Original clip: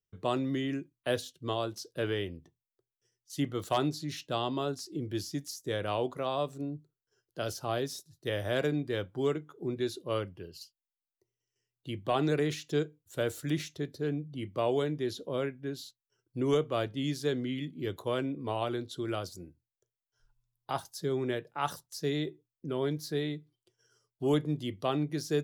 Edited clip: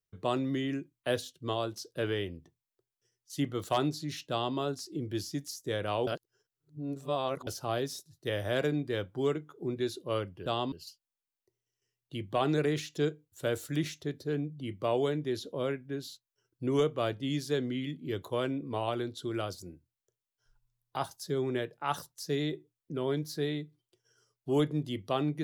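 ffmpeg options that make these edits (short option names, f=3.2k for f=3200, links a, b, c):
-filter_complex "[0:a]asplit=5[a][b][c][d][e];[a]atrim=end=6.072[f];[b]atrim=start=6.068:end=7.472,asetpts=PTS-STARTPTS,areverse[g];[c]atrim=start=7.468:end=10.462[h];[d]atrim=start=4.298:end=4.562[i];[e]atrim=start=10.458[j];[f][g]acrossfade=d=0.004:c1=hsin:c2=hsin[k];[k][h]acrossfade=d=0.004:c1=hsin:c2=hsin[l];[l][i]acrossfade=d=0.004:c1=hsin:c2=hsin[m];[m][j]acrossfade=d=0.004:c1=hsin:c2=hsin"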